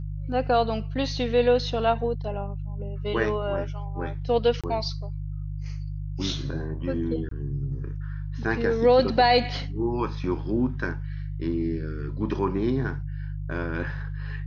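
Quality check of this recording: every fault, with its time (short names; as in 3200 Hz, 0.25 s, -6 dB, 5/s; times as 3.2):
hum 50 Hz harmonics 3 -32 dBFS
4.61–4.64 gap 26 ms
7.29–7.31 gap 23 ms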